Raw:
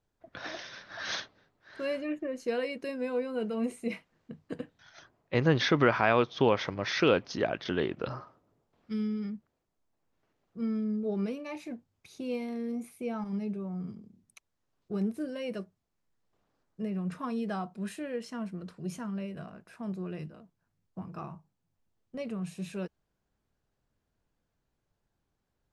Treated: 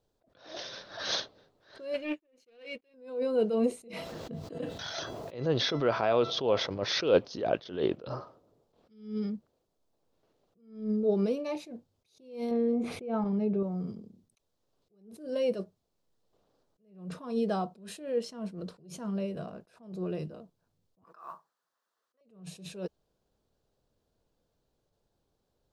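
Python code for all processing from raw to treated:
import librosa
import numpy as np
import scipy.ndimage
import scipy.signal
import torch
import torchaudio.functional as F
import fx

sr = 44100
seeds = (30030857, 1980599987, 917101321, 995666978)

y = fx.chain(x, sr, fx.leveller(passes=2),
    fx.peak_eq(hz=2400.0, db=15.0, octaves=0.98),
    fx.upward_expand(threshold_db=-39.0, expansion=2.5), at=(1.94, 2.94))
y = fx.chain(y, sr, fx.highpass(hz=41.0, slope=12),
    fx.comb_fb(f0_hz=670.0, decay_s=0.25, harmonics='all', damping=0.0, mix_pct=70),
    fx.env_flatten(amount_pct=70), at=(3.93, 6.66))
y = fx.chain(y, sr, fx.lowpass(hz=2400.0, slope=12),
    fx.env_flatten(amount_pct=70), at=(12.51, 13.63))
y = fx.chain(y, sr, fx.highpass(hz=680.0, slope=12),
    fx.band_shelf(hz=1400.0, db=12.0, octaves=1.1),
    fx.mod_noise(seeds[0], snr_db=35), at=(21.04, 22.21))
y = fx.graphic_eq_10(y, sr, hz=(500, 2000, 4000), db=(8, -7, 6))
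y = fx.attack_slew(y, sr, db_per_s=120.0)
y = y * 10.0 ** (1.5 / 20.0)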